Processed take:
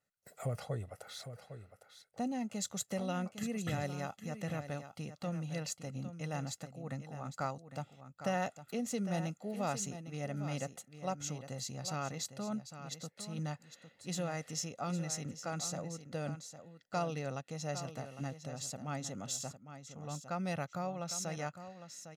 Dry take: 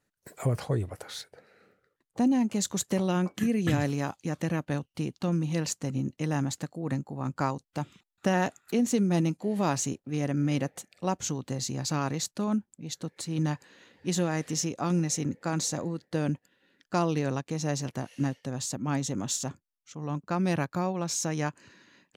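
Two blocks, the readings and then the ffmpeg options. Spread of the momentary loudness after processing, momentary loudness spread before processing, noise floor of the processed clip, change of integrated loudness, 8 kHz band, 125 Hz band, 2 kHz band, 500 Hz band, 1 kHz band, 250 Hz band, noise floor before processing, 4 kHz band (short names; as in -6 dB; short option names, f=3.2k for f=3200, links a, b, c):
10 LU, 9 LU, -69 dBFS, -9.5 dB, -7.5 dB, -10.0 dB, -8.0 dB, -8.0 dB, -7.0 dB, -12.0 dB, -81 dBFS, -7.5 dB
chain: -af "lowshelf=f=86:g=-12,aecho=1:1:1.5:0.61,aecho=1:1:806:0.282,volume=-9dB"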